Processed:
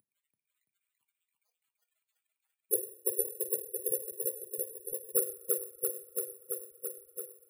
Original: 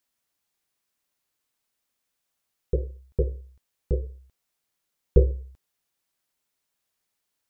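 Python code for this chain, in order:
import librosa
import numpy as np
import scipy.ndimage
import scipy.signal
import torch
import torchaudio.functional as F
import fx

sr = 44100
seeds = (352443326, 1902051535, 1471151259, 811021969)

y = fx.cvsd(x, sr, bps=32000)
y = fx.spec_topn(y, sr, count=8)
y = fx.filter_sweep_highpass(y, sr, from_hz=210.0, to_hz=540.0, start_s=1.51, end_s=3.47, q=1.2)
y = np.clip(y, -10.0 ** (-19.0 / 20.0), 10.0 ** (-19.0 / 20.0))
y = fx.echo_feedback(y, sr, ms=336, feedback_pct=58, wet_db=-3.5)
y = fx.rev_double_slope(y, sr, seeds[0], early_s=0.58, late_s=4.4, knee_db=-28, drr_db=11.5)
y = (np.kron(scipy.signal.resample_poly(y, 1, 4), np.eye(4)[0]) * 4)[:len(y)]
y = fx.band_squash(y, sr, depth_pct=70)
y = y * 10.0 ** (-3.5 / 20.0)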